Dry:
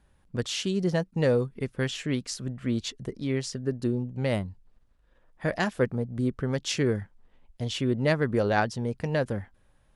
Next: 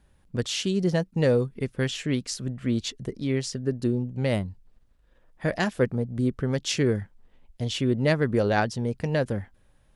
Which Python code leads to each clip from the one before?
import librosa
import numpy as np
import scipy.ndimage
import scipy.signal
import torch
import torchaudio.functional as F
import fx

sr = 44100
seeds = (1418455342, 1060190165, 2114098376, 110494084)

y = fx.peak_eq(x, sr, hz=1100.0, db=-3.0, octaves=1.5)
y = y * 10.0 ** (2.5 / 20.0)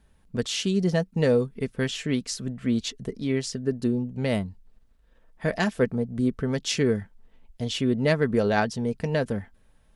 y = x + 0.32 * np.pad(x, (int(4.5 * sr / 1000.0), 0))[:len(x)]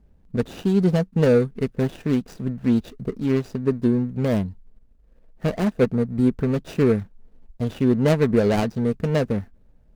y = scipy.signal.medfilt(x, 41)
y = y * 10.0 ** (5.5 / 20.0)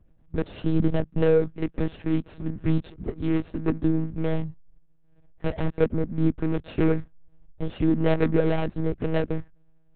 y = fx.lpc_monotone(x, sr, seeds[0], pitch_hz=160.0, order=10)
y = y * 10.0 ** (-2.5 / 20.0)